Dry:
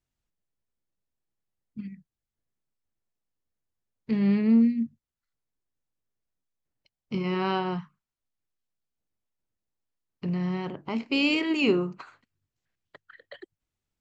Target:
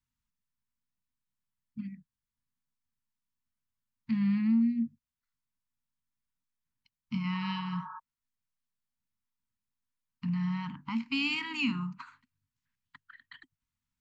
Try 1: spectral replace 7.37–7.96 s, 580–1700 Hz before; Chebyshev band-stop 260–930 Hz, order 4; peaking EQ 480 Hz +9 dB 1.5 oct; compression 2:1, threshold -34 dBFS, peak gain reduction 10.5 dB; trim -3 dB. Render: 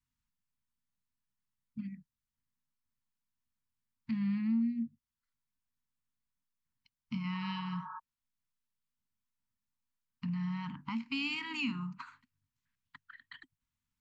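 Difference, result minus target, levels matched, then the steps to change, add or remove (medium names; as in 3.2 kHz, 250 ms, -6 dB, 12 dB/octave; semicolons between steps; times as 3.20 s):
compression: peak gain reduction +5 dB
change: compression 2:1, threshold -24 dBFS, peak gain reduction 5.5 dB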